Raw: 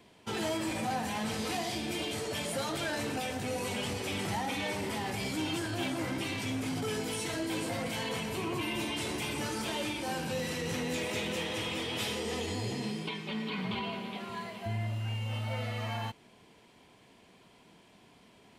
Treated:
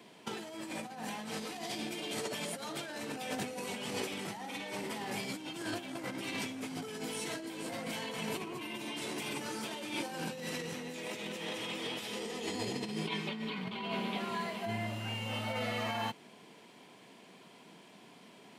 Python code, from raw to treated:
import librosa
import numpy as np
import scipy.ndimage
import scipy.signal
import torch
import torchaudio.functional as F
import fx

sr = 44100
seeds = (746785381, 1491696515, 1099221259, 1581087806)

y = scipy.signal.sosfilt(scipy.signal.butter(4, 150.0, 'highpass', fs=sr, output='sos'), x)
y = fx.over_compress(y, sr, threshold_db=-38.0, ratio=-0.5)